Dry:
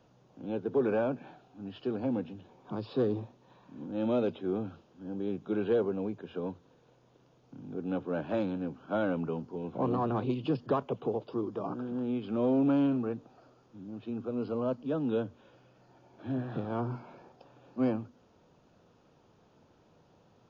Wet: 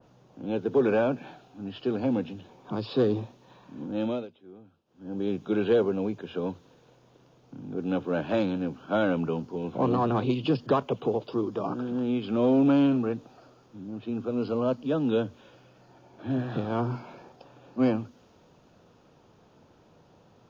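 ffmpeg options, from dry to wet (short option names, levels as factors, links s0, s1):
-filter_complex "[0:a]asplit=3[s0][s1][s2];[s0]atrim=end=4.28,asetpts=PTS-STARTPTS,afade=t=out:st=3.93:d=0.35:silence=0.0841395[s3];[s1]atrim=start=4.28:end=4.85,asetpts=PTS-STARTPTS,volume=0.0841[s4];[s2]atrim=start=4.85,asetpts=PTS-STARTPTS,afade=t=in:d=0.35:silence=0.0841395[s5];[s3][s4][s5]concat=n=3:v=0:a=1,adynamicequalizer=threshold=0.00251:dfrequency=2000:dqfactor=0.7:tfrequency=2000:tqfactor=0.7:attack=5:release=100:ratio=0.375:range=3:mode=boostabove:tftype=highshelf,volume=1.78"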